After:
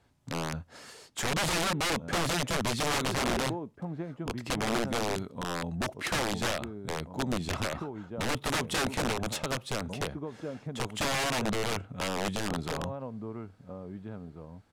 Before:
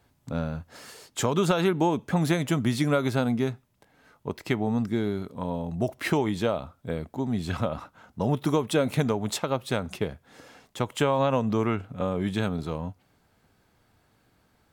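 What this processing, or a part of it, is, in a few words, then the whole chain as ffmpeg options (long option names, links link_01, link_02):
overflowing digital effects unit: -filter_complex "[0:a]asettb=1/sr,asplit=3[link_01][link_02][link_03];[link_01]atrim=end=1.274[link_04];[link_02]atrim=start=1.27:end=2.62,asetpts=PTS-STARTPTS,afade=type=in:duration=0.004:curve=qsin,afade=type=out:start_time=1.346:duration=0.004:curve=qsin,equalizer=frequency=460:width=0.69:gain=2.5[link_05];[link_03]atrim=start=2.616[link_06];[link_04][link_05]acrossfade=duration=0.004:curve1=hsin:curve2=qsin[link_07];[link_07][link_06]acrossfade=duration=0.004:curve1=qsin:curve2=hsin,asplit=2[link_08][link_09];[link_09]adelay=1691,volume=-11dB,highshelf=frequency=4000:gain=-38[link_10];[link_08][link_10]amix=inputs=2:normalize=0,aeval=exprs='(mod(11.2*val(0)+1,2)-1)/11.2':channel_layout=same,lowpass=10000,volume=-2.5dB"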